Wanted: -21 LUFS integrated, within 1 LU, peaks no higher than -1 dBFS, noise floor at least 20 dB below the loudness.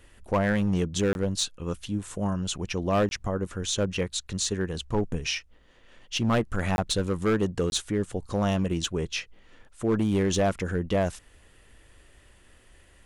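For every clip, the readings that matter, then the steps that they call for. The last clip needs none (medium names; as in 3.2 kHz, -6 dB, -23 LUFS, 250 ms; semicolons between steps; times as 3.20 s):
clipped samples 1.3%; clipping level -18.0 dBFS; dropouts 4; longest dropout 21 ms; loudness -28.0 LUFS; peak level -18.0 dBFS; loudness target -21.0 LUFS
-> clip repair -18 dBFS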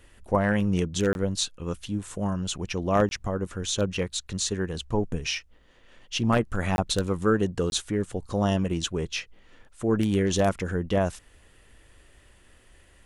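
clipped samples 0.0%; dropouts 4; longest dropout 21 ms
-> interpolate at 1.13/3.09/6.76/7.70 s, 21 ms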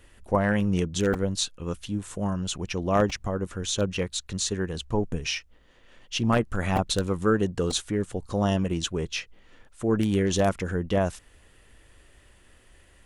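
dropouts 0; loudness -27.0 LUFS; peak level -9.0 dBFS; loudness target -21.0 LUFS
-> trim +6 dB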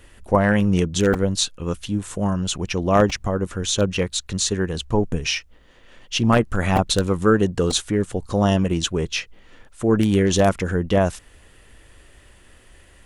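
loudness -21.0 LUFS; peak level -3.0 dBFS; noise floor -51 dBFS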